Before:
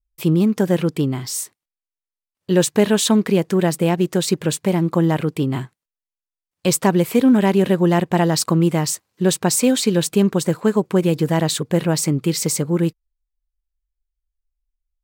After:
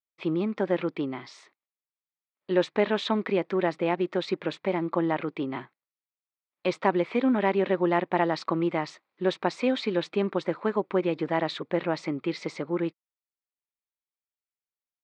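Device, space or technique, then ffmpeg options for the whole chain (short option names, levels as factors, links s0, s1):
phone earpiece: -af "highpass=440,equalizer=f=460:t=q:w=4:g=-7,equalizer=f=710:t=q:w=4:g=-4,equalizer=f=1000:t=q:w=4:g=-3,equalizer=f=1600:t=q:w=4:g=-6,equalizer=f=2900:t=q:w=4:g=-9,lowpass=f=3100:w=0.5412,lowpass=f=3100:w=1.3066"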